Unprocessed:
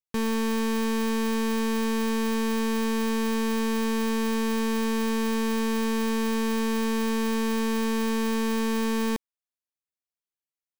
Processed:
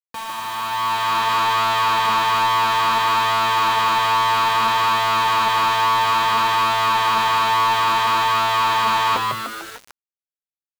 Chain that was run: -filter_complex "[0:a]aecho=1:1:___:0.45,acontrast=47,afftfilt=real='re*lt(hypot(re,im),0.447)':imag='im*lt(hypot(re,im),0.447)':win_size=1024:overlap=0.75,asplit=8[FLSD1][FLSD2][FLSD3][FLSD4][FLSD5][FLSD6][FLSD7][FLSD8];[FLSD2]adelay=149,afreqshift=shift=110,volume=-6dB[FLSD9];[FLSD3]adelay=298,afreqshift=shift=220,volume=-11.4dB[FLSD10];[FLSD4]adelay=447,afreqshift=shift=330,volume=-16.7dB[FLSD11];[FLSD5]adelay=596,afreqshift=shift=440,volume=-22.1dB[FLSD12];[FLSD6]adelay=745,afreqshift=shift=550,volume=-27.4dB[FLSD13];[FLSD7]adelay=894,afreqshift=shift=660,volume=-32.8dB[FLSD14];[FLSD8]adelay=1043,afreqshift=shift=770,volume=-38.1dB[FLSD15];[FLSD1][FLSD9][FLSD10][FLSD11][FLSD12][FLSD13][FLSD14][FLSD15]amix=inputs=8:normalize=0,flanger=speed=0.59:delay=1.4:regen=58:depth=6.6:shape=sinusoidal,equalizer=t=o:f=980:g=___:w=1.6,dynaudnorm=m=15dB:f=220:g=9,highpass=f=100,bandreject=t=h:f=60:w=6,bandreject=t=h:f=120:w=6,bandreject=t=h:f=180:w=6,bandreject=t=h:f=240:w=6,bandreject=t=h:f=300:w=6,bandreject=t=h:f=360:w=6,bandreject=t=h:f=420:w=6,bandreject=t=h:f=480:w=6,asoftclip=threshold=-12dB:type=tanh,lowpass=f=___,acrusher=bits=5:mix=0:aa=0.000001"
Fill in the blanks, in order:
4.2, 4.5, 3900